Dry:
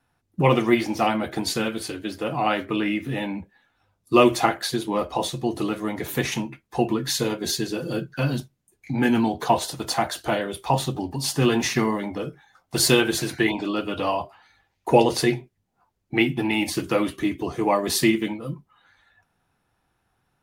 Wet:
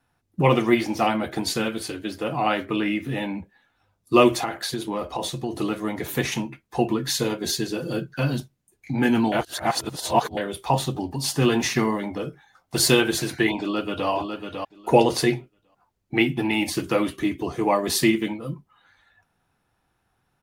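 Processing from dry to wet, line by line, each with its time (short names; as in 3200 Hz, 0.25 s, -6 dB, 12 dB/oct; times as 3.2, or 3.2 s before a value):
4.38–5.54 compressor 4:1, threshold -23 dBFS
9.32–10.37 reverse
13.6–14.09 echo throw 0.55 s, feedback 15%, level -6 dB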